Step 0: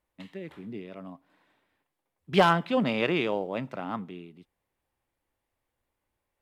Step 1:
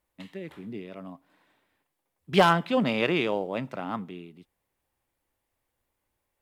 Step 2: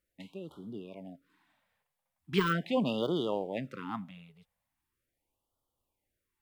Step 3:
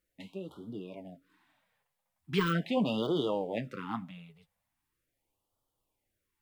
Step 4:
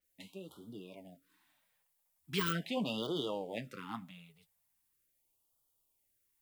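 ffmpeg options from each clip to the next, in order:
-af "highshelf=f=6.7k:g=5.5,volume=1dB"
-af "deesser=0.7,afftfilt=real='re*(1-between(b*sr/1024,300*pow(2100/300,0.5+0.5*sin(2*PI*0.4*pts/sr))/1.41,300*pow(2100/300,0.5+0.5*sin(2*PI*0.4*pts/sr))*1.41))':imag='im*(1-between(b*sr/1024,300*pow(2100/300,0.5+0.5*sin(2*PI*0.4*pts/sr))/1.41,300*pow(2100/300,0.5+0.5*sin(2*PI*0.4*pts/sr))*1.41))':win_size=1024:overlap=0.75,volume=-4.5dB"
-filter_complex "[0:a]asplit=2[a][b];[b]alimiter=limit=-23.5dB:level=0:latency=1,volume=-1.5dB[c];[a][c]amix=inputs=2:normalize=0,flanger=delay=6.2:depth=4:regen=-40:speed=1.2:shape=sinusoidal"
-af "crystalizer=i=3.5:c=0,adynamicequalizer=threshold=0.00355:dfrequency=6900:dqfactor=0.7:tfrequency=6900:tqfactor=0.7:attack=5:release=100:ratio=0.375:range=2.5:mode=cutabove:tftype=highshelf,volume=-7dB"

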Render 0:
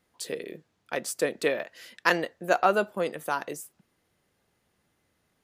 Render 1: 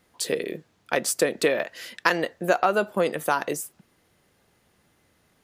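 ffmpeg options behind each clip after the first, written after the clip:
-af "acompressor=threshold=-25dB:ratio=6,volume=8dB"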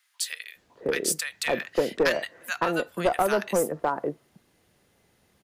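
-filter_complex "[0:a]acrossover=split=1300[a][b];[a]adelay=560[c];[c][b]amix=inputs=2:normalize=0,acrossover=split=220|5000[d][e][f];[e]aeval=exprs='clip(val(0),-1,0.106)':c=same[g];[d][g][f]amix=inputs=3:normalize=0"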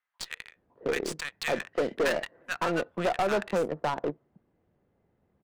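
-af "volume=22.5dB,asoftclip=hard,volume=-22.5dB,aeval=exprs='0.0794*(cos(1*acos(clip(val(0)/0.0794,-1,1)))-cos(1*PI/2))+0.00631*(cos(2*acos(clip(val(0)/0.0794,-1,1)))-cos(2*PI/2))+0.00891*(cos(3*acos(clip(val(0)/0.0794,-1,1)))-cos(3*PI/2))':c=same,adynamicsmooth=sensitivity=4.5:basefreq=1.1k"

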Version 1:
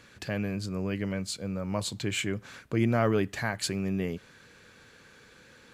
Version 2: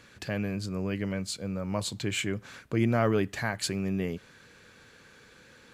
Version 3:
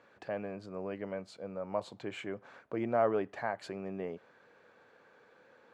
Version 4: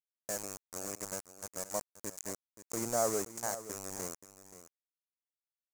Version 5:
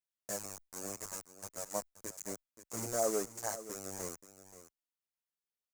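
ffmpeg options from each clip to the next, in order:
-af anull
-af "bandpass=f=700:t=q:w=1.5:csg=0,volume=1.5dB"
-af "aeval=exprs='val(0)*gte(abs(val(0)),0.0178)':c=same,highshelf=f=4.8k:t=q:w=3:g=13.5,aecho=1:1:528:0.2,volume=-3dB"
-filter_complex "[0:a]asplit=2[a][b];[b]adelay=8.7,afreqshift=-2[c];[a][c]amix=inputs=2:normalize=1,volume=1dB"

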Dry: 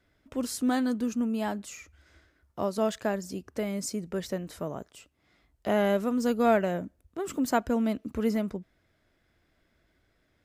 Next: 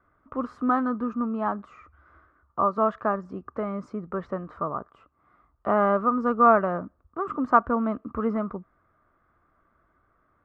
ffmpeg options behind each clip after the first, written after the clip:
-af "lowpass=f=1.2k:t=q:w=10"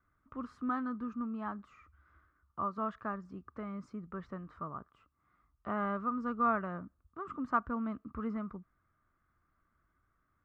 -af "equalizer=f=590:w=0.67:g=-12,volume=-5.5dB"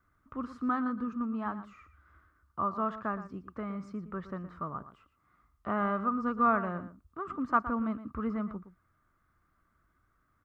-filter_complex "[0:a]asplit=2[a][b];[b]adelay=116.6,volume=-13dB,highshelf=f=4k:g=-2.62[c];[a][c]amix=inputs=2:normalize=0,volume=4dB"

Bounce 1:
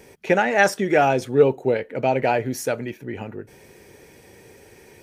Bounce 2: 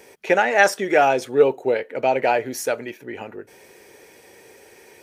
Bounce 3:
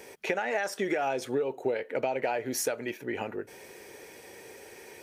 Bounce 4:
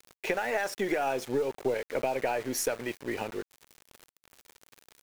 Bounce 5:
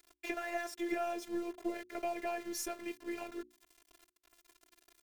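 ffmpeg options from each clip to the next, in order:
-af "bass=f=250:g=-14,treble=f=4k:g=0,volume=2dB"
-af "alimiter=limit=-12dB:level=0:latency=1:release=248,acompressor=threshold=-26dB:ratio=6"
-af "aeval=exprs='val(0)*gte(abs(val(0)),0.01)':c=same,aeval=exprs='0.224*(cos(1*acos(clip(val(0)/0.224,-1,1)))-cos(1*PI/2))+0.0126*(cos(4*acos(clip(val(0)/0.224,-1,1)))-cos(4*PI/2))':c=same"
-af "afftfilt=real='hypot(re,im)*cos(PI*b)':imag='0':win_size=512:overlap=0.75,bandreject=f=60:t=h:w=6,bandreject=f=120:t=h:w=6,bandreject=f=180:t=h:w=6,bandreject=f=240:t=h:w=6,bandreject=f=300:t=h:w=6,bandreject=f=360:t=h:w=6,volume=-4.5dB"

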